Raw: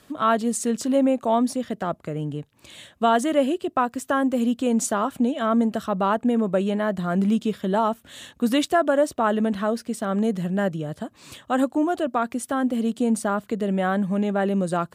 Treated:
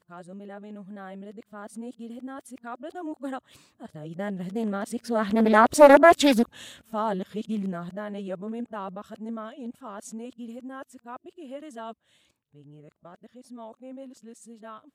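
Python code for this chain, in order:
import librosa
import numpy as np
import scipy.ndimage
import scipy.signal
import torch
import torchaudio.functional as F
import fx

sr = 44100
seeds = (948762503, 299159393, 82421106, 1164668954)

y = np.flip(x).copy()
y = fx.doppler_pass(y, sr, speed_mps=6, closest_m=1.5, pass_at_s=5.85)
y = fx.doppler_dist(y, sr, depth_ms=0.28)
y = F.gain(torch.from_numpy(y), 8.0).numpy()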